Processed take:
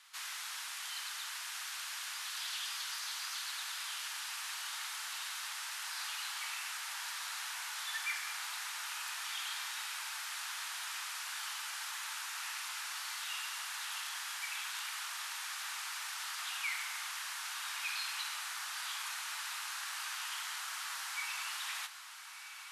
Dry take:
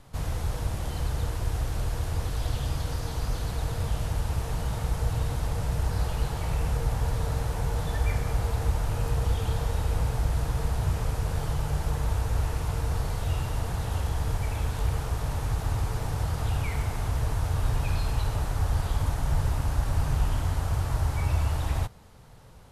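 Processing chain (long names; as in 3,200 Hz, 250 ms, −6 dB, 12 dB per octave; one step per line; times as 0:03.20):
Bessel high-pass filter 2,000 Hz, order 6
high-shelf EQ 8,400 Hz −8 dB
on a send: feedback delay with all-pass diffusion 1,297 ms, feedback 46%, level −10 dB
on the sum: level +6 dB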